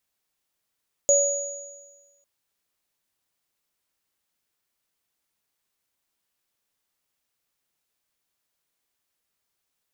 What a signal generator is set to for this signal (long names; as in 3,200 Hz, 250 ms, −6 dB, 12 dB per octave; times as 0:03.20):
inharmonic partials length 1.15 s, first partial 565 Hz, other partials 6,790 Hz, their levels 1.5 dB, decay 1.30 s, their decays 1.39 s, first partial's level −17 dB